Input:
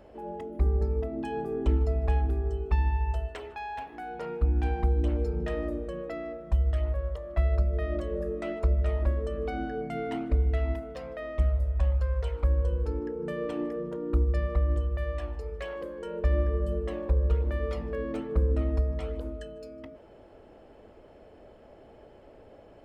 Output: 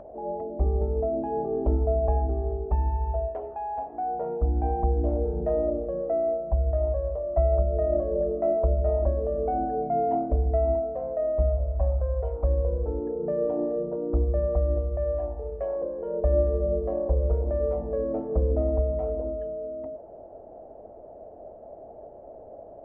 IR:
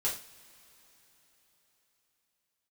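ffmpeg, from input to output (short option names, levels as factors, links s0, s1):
-af "lowpass=f=680:t=q:w=4.9,acompressor=mode=upward:threshold=0.00631:ratio=2.5"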